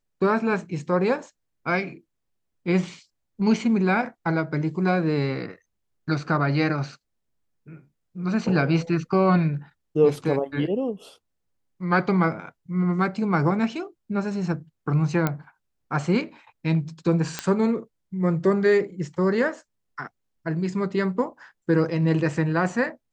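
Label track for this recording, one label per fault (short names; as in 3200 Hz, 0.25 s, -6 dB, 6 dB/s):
15.270000	15.270000	pop -10 dBFS
17.390000	17.390000	pop -10 dBFS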